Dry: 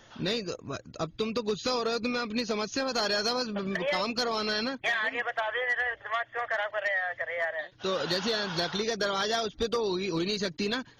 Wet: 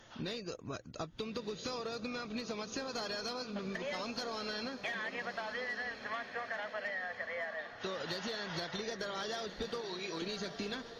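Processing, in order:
0:09.81–0:10.22: high-pass filter 740 Hz 6 dB per octave
downward compressor 6 to 1, threshold −34 dBFS, peak gain reduction 9.5 dB
feedback delay with all-pass diffusion 1,317 ms, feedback 44%, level −10 dB
level −3 dB
AAC 64 kbit/s 44,100 Hz

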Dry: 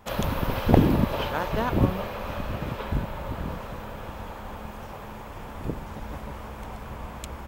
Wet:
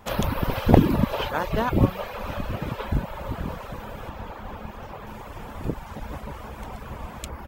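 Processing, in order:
reverb reduction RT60 0.72 s
0:04.09–0:05.07: parametric band 10,000 Hz −8.5 dB 1.4 octaves
level +3 dB

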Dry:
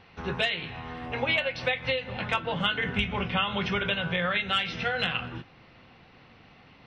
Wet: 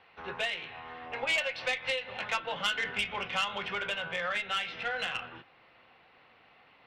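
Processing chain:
three-way crossover with the lows and the highs turned down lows −15 dB, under 410 Hz, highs −24 dB, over 4,300 Hz
tube saturation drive 20 dB, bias 0.25
0:01.27–0:03.45: high-shelf EQ 3,900 Hz +9.5 dB
level −2.5 dB

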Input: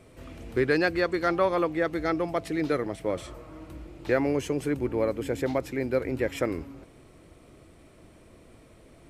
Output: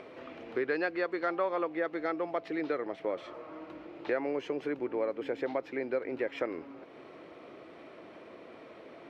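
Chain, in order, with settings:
high-pass filter 380 Hz 12 dB per octave
upward compression, threshold −44 dBFS
high-frequency loss of the air 270 metres
downward compressor 2 to 1, threshold −37 dBFS, peak gain reduction 9 dB
level +3.5 dB

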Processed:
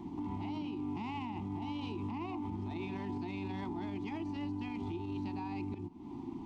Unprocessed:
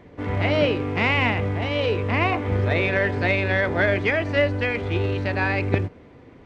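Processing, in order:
drawn EQ curve 120 Hz 0 dB, 200 Hz +10 dB, 350 Hz +12 dB, 510 Hz −26 dB, 880 Hz +13 dB, 1,600 Hz −18 dB, 2,700 Hz −2 dB, 7,200 Hz +4 dB
downward compressor 20 to 1, threshold −29 dBFS, peak gain reduction 22 dB
brickwall limiter −28.5 dBFS, peak gain reduction 10.5 dB
level −3 dB

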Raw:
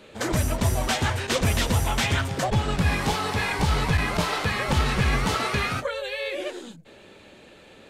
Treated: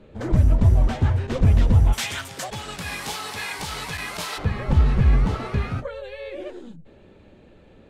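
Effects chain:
spectral tilt −4 dB per octave, from 0:01.92 +2.5 dB per octave, from 0:04.37 −3.5 dB per octave
level −6 dB

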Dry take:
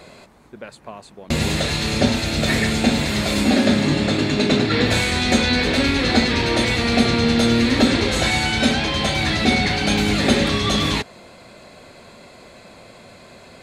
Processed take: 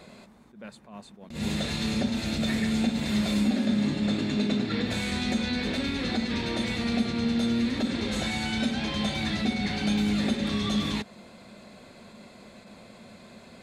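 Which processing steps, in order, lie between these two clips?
downward compressor, threshold −21 dBFS, peak gain reduction 10.5 dB
hollow resonant body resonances 210/3,600 Hz, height 11 dB, ringing for 65 ms
level that may rise only so fast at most 120 dB per second
level −7 dB

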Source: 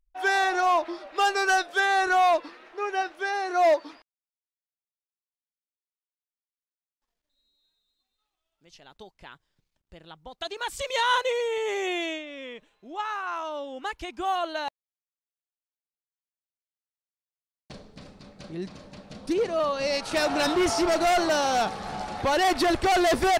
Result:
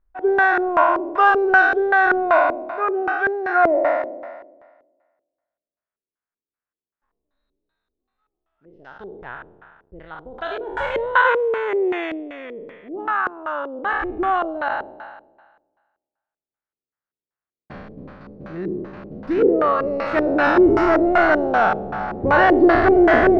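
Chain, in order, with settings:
peak hold with a decay on every bin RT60 1.43 s
auto-filter low-pass square 2.6 Hz 400–1,500 Hz
level +3 dB

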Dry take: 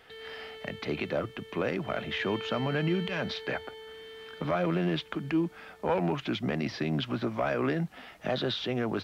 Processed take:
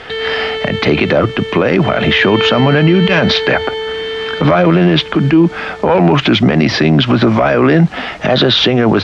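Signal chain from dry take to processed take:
Bessel low-pass filter 5,300 Hz, order 4
boost into a limiter +27 dB
level −1 dB

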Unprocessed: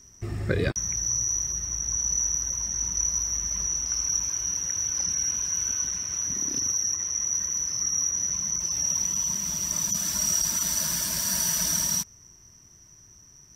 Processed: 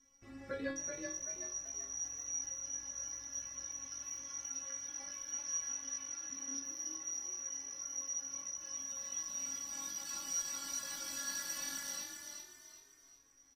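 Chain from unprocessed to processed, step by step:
mid-hump overdrive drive 8 dB, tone 2,000 Hz, clips at −11.5 dBFS
stiff-string resonator 270 Hz, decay 0.4 s, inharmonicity 0.002
on a send: echo with shifted repeats 381 ms, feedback 37%, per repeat +44 Hz, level −5.5 dB
on the sum: level +4 dB

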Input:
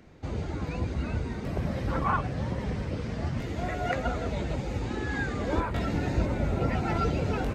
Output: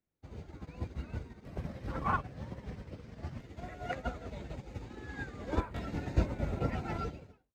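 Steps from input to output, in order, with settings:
fade-out on the ending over 0.63 s
bit-depth reduction 12 bits, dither triangular
expander for the loud parts 2.5 to 1, over −46 dBFS

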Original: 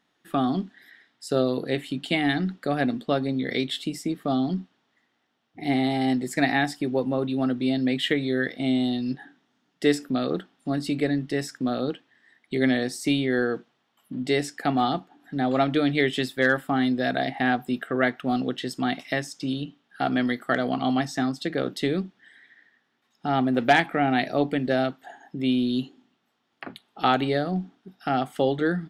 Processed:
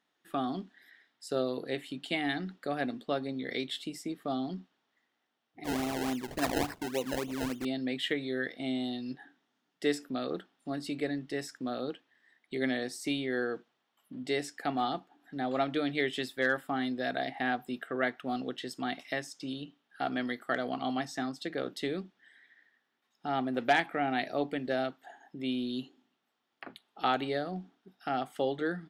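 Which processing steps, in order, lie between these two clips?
bass and treble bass −7 dB, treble 0 dB
0:05.64–0:07.65: sample-and-hold swept by an LFO 26×, swing 100% 3.5 Hz
level −7 dB

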